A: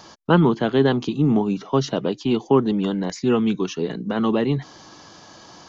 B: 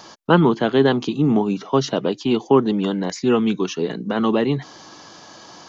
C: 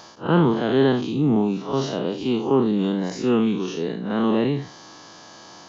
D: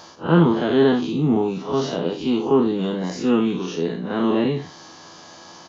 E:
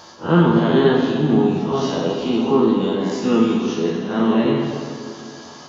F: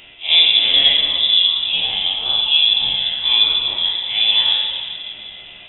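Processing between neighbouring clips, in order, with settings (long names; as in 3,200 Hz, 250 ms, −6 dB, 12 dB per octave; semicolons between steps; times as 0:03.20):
low-shelf EQ 120 Hz −9.5 dB; level +3 dB
spectrum smeared in time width 120 ms
double-tracking delay 12 ms −5 dB
dense smooth reverb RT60 2.3 s, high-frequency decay 0.8×, pre-delay 0 ms, DRR 0 dB
voice inversion scrambler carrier 3,700 Hz; level +1 dB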